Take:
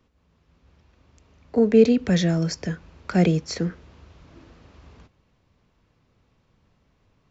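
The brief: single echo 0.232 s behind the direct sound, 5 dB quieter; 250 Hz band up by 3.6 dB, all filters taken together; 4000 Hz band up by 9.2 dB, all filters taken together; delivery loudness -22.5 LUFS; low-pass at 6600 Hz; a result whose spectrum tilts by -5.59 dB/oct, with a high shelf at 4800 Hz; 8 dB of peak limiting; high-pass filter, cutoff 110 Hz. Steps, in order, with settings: HPF 110 Hz; LPF 6600 Hz; bell 250 Hz +5 dB; bell 4000 Hz +9 dB; high shelf 4800 Hz +6 dB; limiter -10 dBFS; echo 0.232 s -5 dB; gain -1.5 dB

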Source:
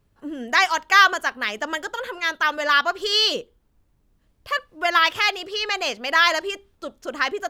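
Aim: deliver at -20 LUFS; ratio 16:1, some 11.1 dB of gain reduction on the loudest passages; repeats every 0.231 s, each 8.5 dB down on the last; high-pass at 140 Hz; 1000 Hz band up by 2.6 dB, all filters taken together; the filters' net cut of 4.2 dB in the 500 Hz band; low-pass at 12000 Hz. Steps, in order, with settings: HPF 140 Hz; LPF 12000 Hz; bell 500 Hz -8 dB; bell 1000 Hz +5 dB; compressor 16:1, threshold -17 dBFS; feedback echo 0.231 s, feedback 38%, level -8.5 dB; gain +3.5 dB

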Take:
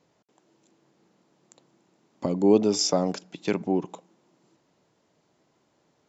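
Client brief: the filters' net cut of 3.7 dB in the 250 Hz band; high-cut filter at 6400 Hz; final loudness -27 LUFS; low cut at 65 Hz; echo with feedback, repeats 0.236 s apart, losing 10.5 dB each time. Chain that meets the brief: HPF 65 Hz; LPF 6400 Hz; bell 250 Hz -5 dB; feedback echo 0.236 s, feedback 30%, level -10.5 dB

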